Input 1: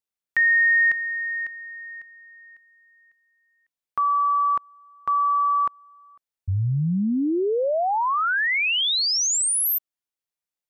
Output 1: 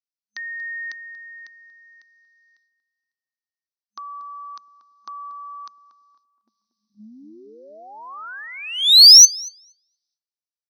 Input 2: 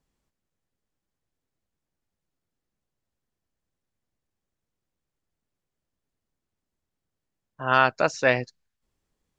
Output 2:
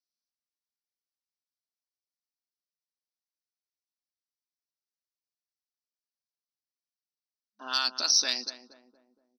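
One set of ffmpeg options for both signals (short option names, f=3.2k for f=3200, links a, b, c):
-filter_complex "[0:a]agate=range=-20dB:threshold=-52dB:ratio=3:release=198:detection=rms,afftfilt=real='re*between(b*sr/4096,210,6200)':imag='im*between(b*sr/4096,210,6200)':win_size=4096:overlap=0.75,equalizer=f=500:t=o:w=1:g=-12,equalizer=f=2k:t=o:w=1:g=-10,equalizer=f=4k:t=o:w=1:g=10,acrossover=split=1300[a][b];[a]acompressor=threshold=-42dB:ratio=6:attack=90:release=50:knee=1:detection=rms[c];[c][b]amix=inputs=2:normalize=0,aexciter=amount=7.7:drive=7.5:freq=4.3k,asplit=2[d][e];[e]adelay=235,lowpass=f=940:p=1,volume=-9.5dB,asplit=2[f][g];[g]adelay=235,lowpass=f=940:p=1,volume=0.51,asplit=2[h][i];[i]adelay=235,lowpass=f=940:p=1,volume=0.51,asplit=2[j][k];[k]adelay=235,lowpass=f=940:p=1,volume=0.51,asplit=2[l][m];[m]adelay=235,lowpass=f=940:p=1,volume=0.51,asplit=2[n][o];[o]adelay=235,lowpass=f=940:p=1,volume=0.51[p];[f][h][j][l][n][p]amix=inputs=6:normalize=0[q];[d][q]amix=inputs=2:normalize=0,volume=-5dB"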